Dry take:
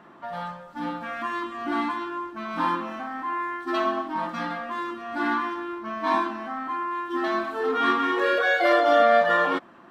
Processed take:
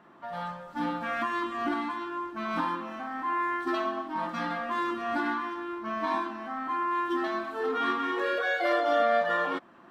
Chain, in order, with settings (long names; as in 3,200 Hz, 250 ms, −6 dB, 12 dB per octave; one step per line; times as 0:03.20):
camcorder AGC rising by 10 dB per second
level −6.5 dB